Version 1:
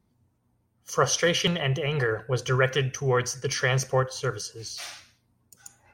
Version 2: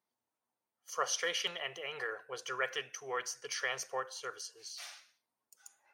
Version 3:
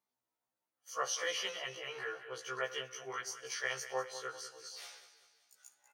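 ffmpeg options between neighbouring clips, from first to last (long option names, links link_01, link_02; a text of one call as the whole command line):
ffmpeg -i in.wav -af "highpass=640,volume=-9dB" out.wav
ffmpeg -i in.wav -filter_complex "[0:a]asplit=2[link_01][link_02];[link_02]aecho=0:1:194|388|582|776|970:0.224|0.116|0.0605|0.0315|0.0164[link_03];[link_01][link_03]amix=inputs=2:normalize=0,afftfilt=real='re*1.73*eq(mod(b,3),0)':imag='im*1.73*eq(mod(b,3),0)':win_size=2048:overlap=0.75" out.wav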